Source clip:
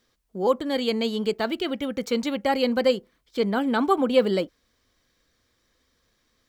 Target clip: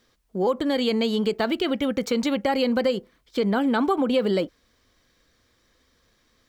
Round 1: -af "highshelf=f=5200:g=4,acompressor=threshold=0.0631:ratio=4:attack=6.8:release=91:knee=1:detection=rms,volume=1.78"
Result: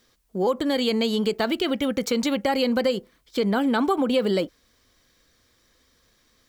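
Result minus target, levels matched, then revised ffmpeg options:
8 kHz band +4.5 dB
-af "highshelf=f=5200:g=-3,acompressor=threshold=0.0631:ratio=4:attack=6.8:release=91:knee=1:detection=rms,volume=1.78"

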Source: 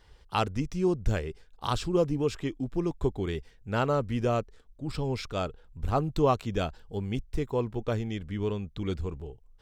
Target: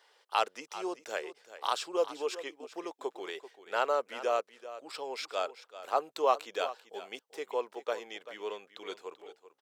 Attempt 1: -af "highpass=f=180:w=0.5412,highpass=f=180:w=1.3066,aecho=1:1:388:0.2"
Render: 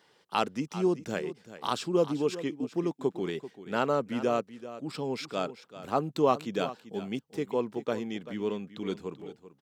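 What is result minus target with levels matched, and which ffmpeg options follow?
250 Hz band +12.0 dB
-af "highpass=f=490:w=0.5412,highpass=f=490:w=1.3066,aecho=1:1:388:0.2"

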